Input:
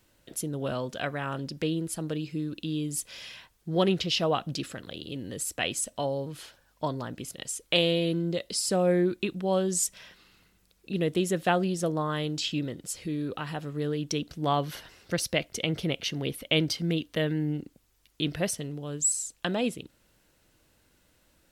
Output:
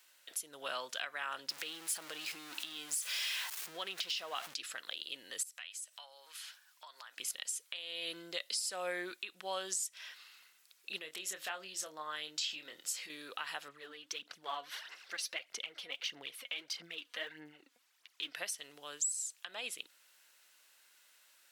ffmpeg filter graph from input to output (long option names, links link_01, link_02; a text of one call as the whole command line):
ffmpeg -i in.wav -filter_complex "[0:a]asettb=1/sr,asplit=3[link_01][link_02][link_03];[link_01]atrim=end=1.494[link_04];[link_02]atrim=start=1.49:end=4.54,asetpts=PTS-STARTPTS,afade=type=in:duration=0.004:curve=qsin,afade=type=out:start_time=3.046:duration=0.004:curve=qsin,aeval=exprs='val(0)+0.5*0.0126*sgn(val(0))':channel_layout=same,acompressor=threshold=-29dB:ratio=6:attack=3.2:release=140:knee=1:detection=peak[link_05];[link_03]atrim=start=4.536[link_06];[link_04][link_05]acrossfade=duration=0.004:curve1=hsin:curve2=qsin[link_07];[link_07][link_06]acrossfade=duration=0.004:curve1=qsin:curve2=hsin,asettb=1/sr,asplit=3[link_08][link_09][link_10];[link_08]atrim=end=5.434[link_11];[link_09]atrim=start=5.43:end=7.17,asetpts=PTS-STARTPTS,afade=type=in:duration=0.004:curve=qsin,afade=type=out:start_time=1.736:duration=0.004:curve=qsin,highpass=1000,acompressor=threshold=-47dB:ratio=5:attack=3.2:release=140:knee=1:detection=peak[link_12];[link_10]atrim=start=7.166[link_13];[link_11][link_12]acrossfade=duration=0.004:curve1=hsin:curve2=qsin[link_14];[link_14][link_13]acrossfade=duration=0.004:curve1=qsin:curve2=hsin,asettb=1/sr,asplit=3[link_15][link_16][link_17];[link_15]atrim=end=10.984[link_18];[link_16]atrim=start=10.98:end=13.1,asetpts=PTS-STARTPTS,afade=type=in:duration=0.004:curve=qsin,afade=type=out:start_time=2.116:duration=0.004:curve=qsin,equalizer=frequency=9700:width_type=o:width=0.23:gain=-8,acompressor=threshold=-34dB:ratio=4:attack=3.2:release=140:knee=1:detection=peak,asplit=2[link_19][link_20];[link_20]adelay=26,volume=-8dB[link_21];[link_19][link_21]amix=inputs=2:normalize=0,atrim=end_sample=93492[link_22];[link_17]atrim=start=13.096[link_23];[link_18][link_22]acrossfade=duration=0.004:curve1=hsin:curve2=qsin[link_24];[link_24][link_23]acrossfade=duration=0.004:curve1=qsin:curve2=hsin,asettb=1/sr,asplit=3[link_25][link_26][link_27];[link_25]atrim=end=13.684[link_28];[link_26]atrim=start=13.68:end=18.35,asetpts=PTS-STARTPTS,afade=type=in:duration=0.004:curve=qsin,afade=type=out:start_time=4.666:duration=0.004:curve=qsin,lowpass=frequency=3200:poles=1,acompressor=threshold=-49dB:ratio=1.5:attack=3.2:release=140:knee=1:detection=peak,aphaser=in_gain=1:out_gain=1:delay=4.2:decay=0.61:speed=1.6:type=sinusoidal[link_29];[link_27]atrim=start=18.346[link_30];[link_28][link_29]acrossfade=duration=0.004:curve1=hsin:curve2=qsin[link_31];[link_31][link_30]acrossfade=duration=0.004:curve1=qsin:curve2=hsin,highpass=1300,acompressor=threshold=-36dB:ratio=12,alimiter=level_in=3.5dB:limit=-24dB:level=0:latency=1:release=344,volume=-3.5dB,volume=3.5dB" out.wav